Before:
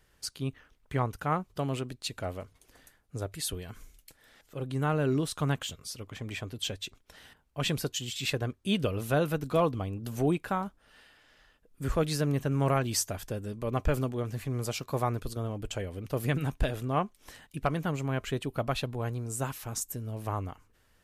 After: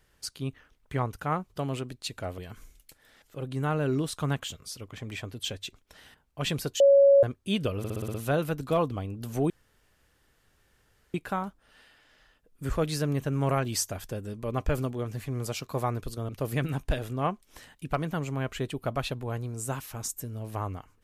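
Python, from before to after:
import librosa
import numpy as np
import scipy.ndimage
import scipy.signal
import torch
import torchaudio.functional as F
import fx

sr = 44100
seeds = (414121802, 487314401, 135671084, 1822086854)

y = fx.edit(x, sr, fx.cut(start_s=2.38, length_s=1.19),
    fx.bleep(start_s=7.99, length_s=0.43, hz=557.0, db=-14.0),
    fx.stutter(start_s=8.97, slice_s=0.06, count=7),
    fx.insert_room_tone(at_s=10.33, length_s=1.64),
    fx.cut(start_s=15.48, length_s=0.53), tone=tone)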